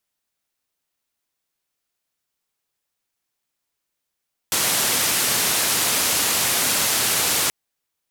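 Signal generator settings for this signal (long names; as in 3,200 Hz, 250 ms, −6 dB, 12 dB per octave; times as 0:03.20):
band-limited noise 93–13,000 Hz, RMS −20.5 dBFS 2.98 s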